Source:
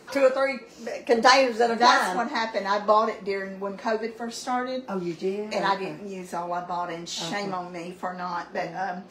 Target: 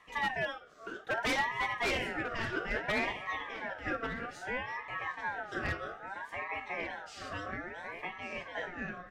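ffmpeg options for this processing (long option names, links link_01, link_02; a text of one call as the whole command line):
ffmpeg -i in.wav -filter_complex "[0:a]highpass=frequency=93:width=0.5412,highpass=frequency=93:width=1.3066,highshelf=frequency=2100:gain=-11.5,aeval=exprs='clip(val(0),-1,0.112)':channel_layout=same,lowshelf=frequency=210:gain=-3.5,aeval=exprs='0.126*(abs(mod(val(0)/0.126+3,4)-2)-1)':channel_layout=same,asplit=2[link_01][link_02];[link_02]adelay=1144,lowpass=frequency=2800:poles=1,volume=-7dB,asplit=2[link_03][link_04];[link_04]adelay=1144,lowpass=frequency=2800:poles=1,volume=0.36,asplit=2[link_05][link_06];[link_06]adelay=1144,lowpass=frequency=2800:poles=1,volume=0.36,asplit=2[link_07][link_08];[link_08]adelay=1144,lowpass=frequency=2800:poles=1,volume=0.36[link_09];[link_03][link_05][link_07][link_09]amix=inputs=4:normalize=0[link_10];[link_01][link_10]amix=inputs=2:normalize=0,aresample=32000,aresample=44100,aeval=exprs='val(0)*sin(2*PI*1200*n/s+1200*0.25/0.61*sin(2*PI*0.61*n/s))':channel_layout=same,volume=-5.5dB" out.wav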